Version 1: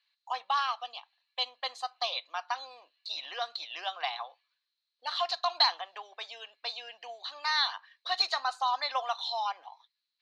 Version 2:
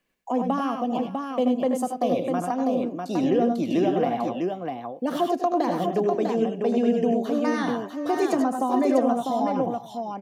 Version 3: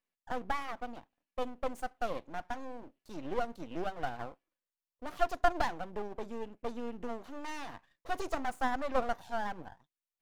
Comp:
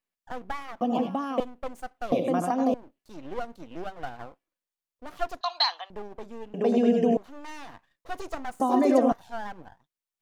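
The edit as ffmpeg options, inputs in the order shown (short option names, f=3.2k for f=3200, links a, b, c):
-filter_complex "[1:a]asplit=4[a][b][c][d];[2:a]asplit=6[e][f][g][h][i][j];[e]atrim=end=0.812[k];[a]atrim=start=0.808:end=1.402[l];[f]atrim=start=1.398:end=2.122[m];[b]atrim=start=2.118:end=2.742[n];[g]atrim=start=2.738:end=5.412[o];[0:a]atrim=start=5.408:end=5.902[p];[h]atrim=start=5.898:end=6.542[q];[c]atrim=start=6.538:end=7.172[r];[i]atrim=start=7.168:end=8.602[s];[d]atrim=start=8.598:end=9.122[t];[j]atrim=start=9.118[u];[k][l]acrossfade=d=0.004:c1=hsin:c2=hsin[v];[v][m]acrossfade=d=0.004:c1=hsin:c2=hsin[w];[w][n]acrossfade=d=0.004:c1=hsin:c2=hsin[x];[x][o]acrossfade=d=0.004:c1=hsin:c2=hsin[y];[y][p]acrossfade=d=0.004:c1=hsin:c2=hsin[z];[z][q]acrossfade=d=0.004:c1=hsin:c2=hsin[aa];[aa][r]acrossfade=d=0.004:c1=hsin:c2=hsin[ab];[ab][s]acrossfade=d=0.004:c1=hsin:c2=hsin[ac];[ac][t]acrossfade=d=0.004:c1=hsin:c2=hsin[ad];[ad][u]acrossfade=d=0.004:c1=hsin:c2=hsin"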